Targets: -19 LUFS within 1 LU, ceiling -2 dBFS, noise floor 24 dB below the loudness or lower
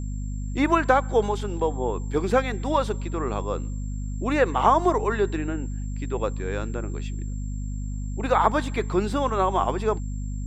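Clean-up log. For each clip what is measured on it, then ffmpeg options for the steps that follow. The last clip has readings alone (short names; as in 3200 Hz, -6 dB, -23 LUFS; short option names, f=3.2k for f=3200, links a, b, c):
hum 50 Hz; harmonics up to 250 Hz; hum level -27 dBFS; steady tone 7400 Hz; tone level -50 dBFS; loudness -25.5 LUFS; peak -4.5 dBFS; loudness target -19.0 LUFS
-> -af "bandreject=f=50:t=h:w=6,bandreject=f=100:t=h:w=6,bandreject=f=150:t=h:w=6,bandreject=f=200:t=h:w=6,bandreject=f=250:t=h:w=6"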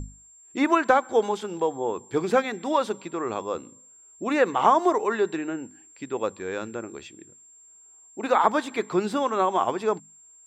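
hum none; steady tone 7400 Hz; tone level -50 dBFS
-> -af "bandreject=f=7.4k:w=30"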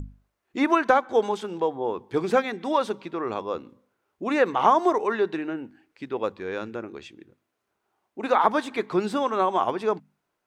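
steady tone none; loudness -25.0 LUFS; peak -5.0 dBFS; loudness target -19.0 LUFS
-> -af "volume=6dB,alimiter=limit=-2dB:level=0:latency=1"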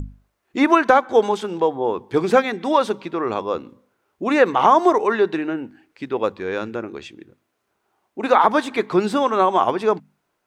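loudness -19.5 LUFS; peak -2.0 dBFS; noise floor -73 dBFS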